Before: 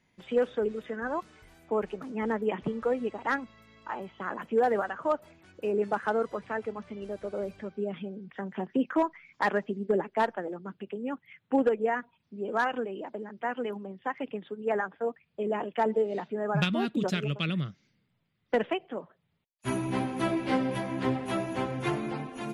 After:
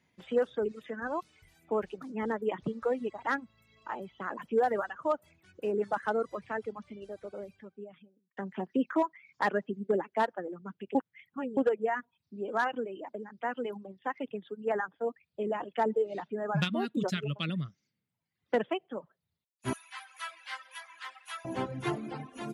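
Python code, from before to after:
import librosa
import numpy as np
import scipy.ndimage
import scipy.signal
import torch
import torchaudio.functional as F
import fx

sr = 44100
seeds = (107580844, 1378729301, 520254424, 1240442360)

y = fx.highpass(x, sr, hz=1200.0, slope=24, at=(19.73, 21.45))
y = fx.edit(y, sr, fx.fade_out_span(start_s=6.59, length_s=1.78),
    fx.reverse_span(start_s=10.95, length_s=0.62), tone=tone)
y = fx.dereverb_blind(y, sr, rt60_s=0.92)
y = fx.dynamic_eq(y, sr, hz=2400.0, q=4.4, threshold_db=-53.0, ratio=4.0, max_db=-4)
y = scipy.signal.sosfilt(scipy.signal.butter(2, 51.0, 'highpass', fs=sr, output='sos'), y)
y = y * librosa.db_to_amplitude(-1.5)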